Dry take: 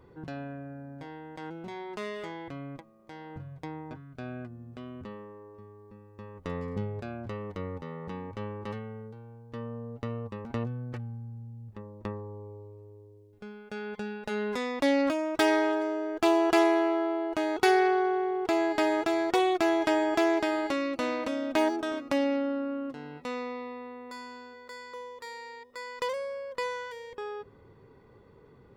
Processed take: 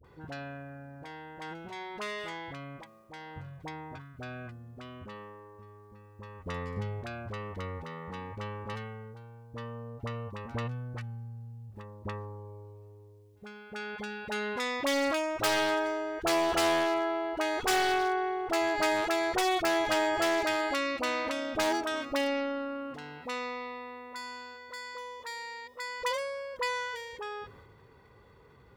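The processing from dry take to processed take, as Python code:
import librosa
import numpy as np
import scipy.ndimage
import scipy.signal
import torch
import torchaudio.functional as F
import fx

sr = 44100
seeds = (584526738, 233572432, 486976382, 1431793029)

y = scipy.signal.sosfilt(scipy.signal.butter(4, 41.0, 'highpass', fs=sr, output='sos'), x)
y = fx.peak_eq(y, sr, hz=270.0, db=-11.0, octaves=2.7)
y = fx.transient(y, sr, attack_db=1, sustain_db=6)
y = 10.0 ** (-24.5 / 20.0) * (np.abs((y / 10.0 ** (-24.5 / 20.0) + 3.0) % 4.0 - 2.0) - 1.0)
y = fx.dispersion(y, sr, late='highs', ms=46.0, hz=720.0)
y = y * 10.0 ** (4.5 / 20.0)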